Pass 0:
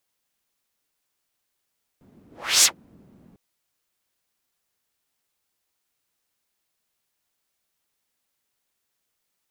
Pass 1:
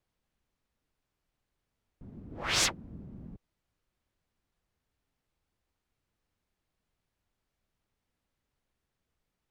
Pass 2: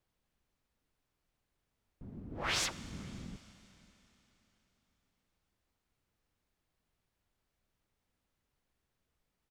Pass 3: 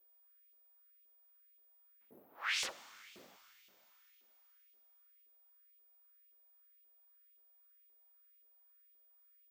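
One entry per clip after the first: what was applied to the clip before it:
RIAA curve playback; gain -2 dB
compressor 10:1, threshold -30 dBFS, peak gain reduction 8 dB; outdoor echo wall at 95 m, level -23 dB; Schroeder reverb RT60 3.8 s, combs from 32 ms, DRR 15.5 dB
LFO high-pass saw up 1.9 Hz 380–2900 Hz; whine 15000 Hz -60 dBFS; Doppler distortion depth 0.72 ms; gain -5.5 dB

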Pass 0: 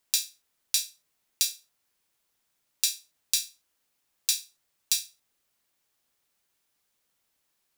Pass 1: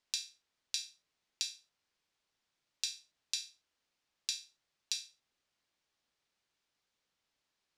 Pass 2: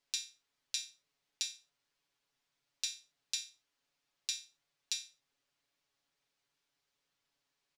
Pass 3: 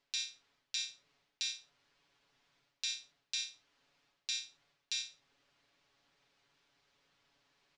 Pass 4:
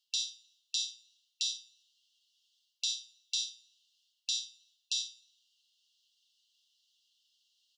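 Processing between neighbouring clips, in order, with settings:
Chebyshev low-pass 4900 Hz, order 2; compressor 4:1, threshold -29 dBFS, peak gain reduction 5.5 dB; gain -3.5 dB
comb 7.1 ms, depth 77%; gain -2 dB
reverse; compressor 6:1, threshold -43 dBFS, peak gain reduction 12.5 dB; reverse; air absorption 110 m; gain +12.5 dB
brick-wall FIR high-pass 2700 Hz; plate-style reverb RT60 1.8 s, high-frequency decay 0.55×, DRR 19.5 dB; gain +4.5 dB

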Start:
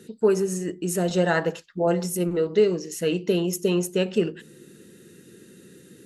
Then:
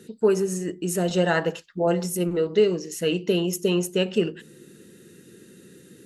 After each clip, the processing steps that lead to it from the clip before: dynamic EQ 2900 Hz, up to +5 dB, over -50 dBFS, Q 7.4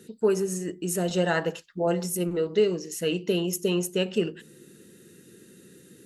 high shelf 7400 Hz +4.5 dB; gain -3 dB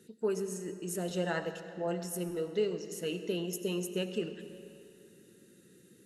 reverb RT60 2.8 s, pre-delay 50 ms, DRR 10 dB; gain -9 dB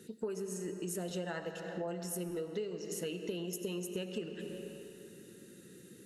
compressor 6:1, threshold -41 dBFS, peak gain reduction 14.5 dB; gain +5 dB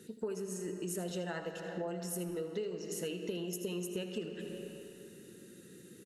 echo 79 ms -13 dB

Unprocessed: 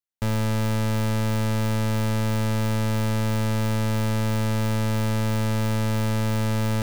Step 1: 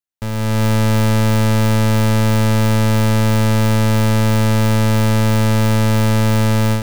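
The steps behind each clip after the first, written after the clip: AGC gain up to 9.5 dB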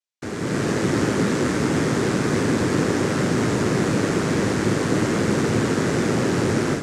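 noise vocoder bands 3; gain -5.5 dB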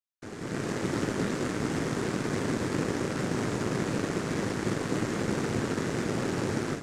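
added harmonics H 7 -25 dB, 8 -28 dB, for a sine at -6.5 dBFS; gain -8 dB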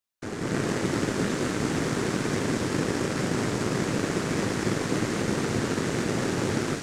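vocal rider within 4 dB 0.5 s; thin delay 0.226 s, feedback 77%, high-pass 2300 Hz, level -4.5 dB; gain +3 dB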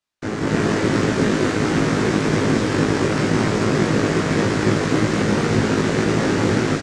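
air absorption 66 m; doubler 19 ms -2 dB; gain +6.5 dB

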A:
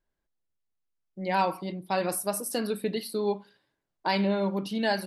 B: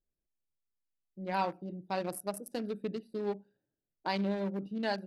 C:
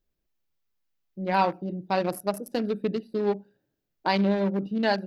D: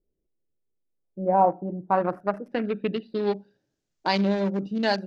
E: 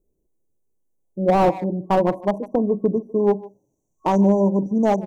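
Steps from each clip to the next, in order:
Wiener smoothing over 41 samples; gain -5.5 dB
bell 9100 Hz -10.5 dB 0.68 oct; gain +9 dB
low-pass sweep 430 Hz -> 6900 Hz, 0.89–3.8
FFT band-reject 1100–5700 Hz; speakerphone echo 0.15 s, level -19 dB; slew limiter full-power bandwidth 59 Hz; gain +7.5 dB

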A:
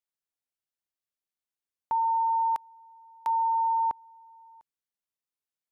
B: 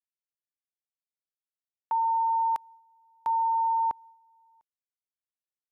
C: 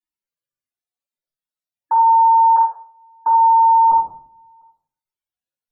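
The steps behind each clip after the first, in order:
expander -46 dBFS
loudest bins only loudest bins 64; reverb RT60 0.55 s, pre-delay 3 ms, DRR -9 dB

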